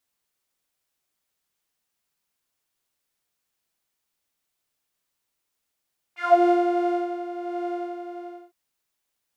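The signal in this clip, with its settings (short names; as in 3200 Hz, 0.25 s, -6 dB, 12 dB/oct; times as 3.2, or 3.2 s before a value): synth patch with tremolo F5, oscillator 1 saw, interval 0 st, detune 28 cents, oscillator 2 level -2 dB, sub -6 dB, noise -20.5 dB, filter bandpass, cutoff 450 Hz, Q 4.5, filter envelope 2.5 oct, filter decay 0.22 s, filter sustain 0%, attack 0.331 s, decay 0.57 s, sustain -13 dB, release 0.68 s, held 1.68 s, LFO 1.5 Hz, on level 4.5 dB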